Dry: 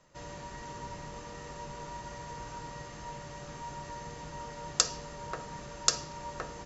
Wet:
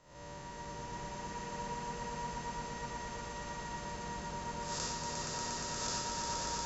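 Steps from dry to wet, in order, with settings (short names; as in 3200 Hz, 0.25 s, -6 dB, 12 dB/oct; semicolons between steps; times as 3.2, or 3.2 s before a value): time blur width 0.203 s; swelling echo 0.118 s, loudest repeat 5, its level -5 dB; gain -2 dB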